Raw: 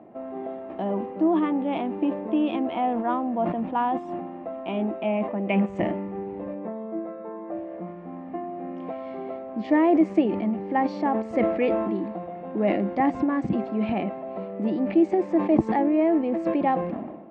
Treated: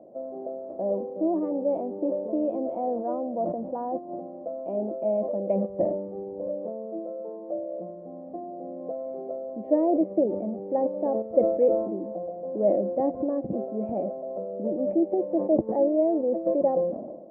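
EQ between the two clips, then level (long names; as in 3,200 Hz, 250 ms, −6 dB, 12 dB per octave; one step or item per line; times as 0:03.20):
low-pass with resonance 560 Hz, resonance Q 6.4
−8.0 dB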